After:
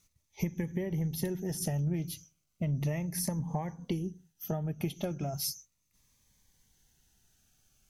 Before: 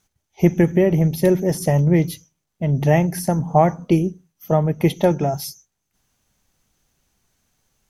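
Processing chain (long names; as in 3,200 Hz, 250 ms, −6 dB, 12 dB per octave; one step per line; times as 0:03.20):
downward compressor 6 to 1, threshold −26 dBFS, peak gain reduction 17 dB
parametric band 460 Hz −6 dB 2.9 octaves
phaser whose notches keep moving one way falling 0.35 Hz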